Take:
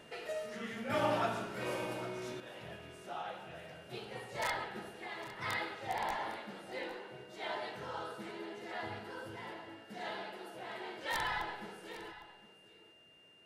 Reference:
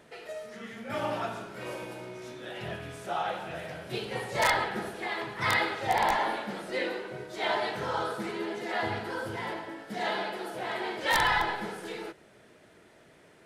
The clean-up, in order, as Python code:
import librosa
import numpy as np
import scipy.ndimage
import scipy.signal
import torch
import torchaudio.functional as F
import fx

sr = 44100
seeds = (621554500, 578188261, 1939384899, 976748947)

y = fx.notch(x, sr, hz=2800.0, q=30.0)
y = fx.fix_echo_inverse(y, sr, delay_ms=806, level_db=-15.5)
y = fx.gain(y, sr, db=fx.steps((0.0, 0.0), (2.4, 11.0)))